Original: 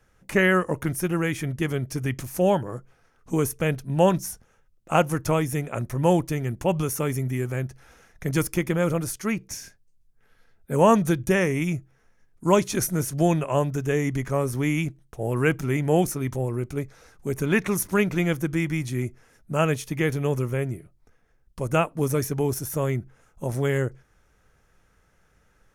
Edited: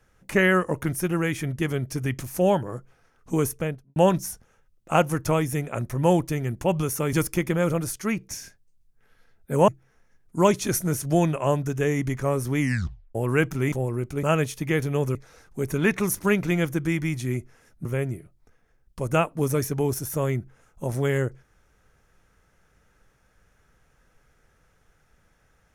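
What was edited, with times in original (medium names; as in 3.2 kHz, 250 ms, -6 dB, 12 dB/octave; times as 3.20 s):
3.47–3.96 s: studio fade out
7.13–8.33 s: delete
10.88–11.76 s: delete
14.68 s: tape stop 0.55 s
15.80–16.32 s: delete
19.53–20.45 s: move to 16.83 s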